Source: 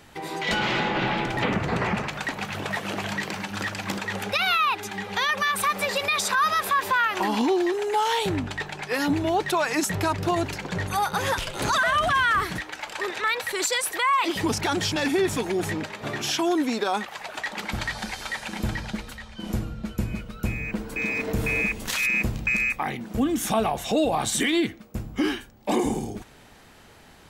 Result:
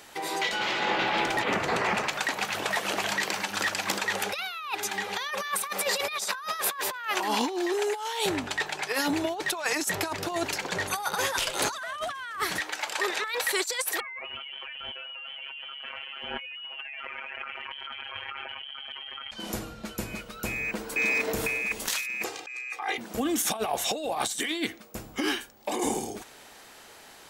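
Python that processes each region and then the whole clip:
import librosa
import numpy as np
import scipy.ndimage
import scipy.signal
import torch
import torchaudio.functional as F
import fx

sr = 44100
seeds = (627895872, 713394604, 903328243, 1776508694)

y = fx.chain(x, sr, fx.robotise(hz=141.0),
    fx.freq_invert(carrier_hz=3200),
    fx.env_flatten(amount_pct=100), at=(14.0, 19.31))
y = fx.chain(y, sr, fx.bandpass_edges(low_hz=440.0, high_hz=7300.0),
    fx.comb(ms=2.5, depth=0.96), at=(22.24, 22.98))
y = fx.bass_treble(y, sr, bass_db=-15, treble_db=5)
y = fx.over_compress(y, sr, threshold_db=-27.0, ratio=-0.5)
y = F.gain(torch.from_numpy(y), -2.5).numpy()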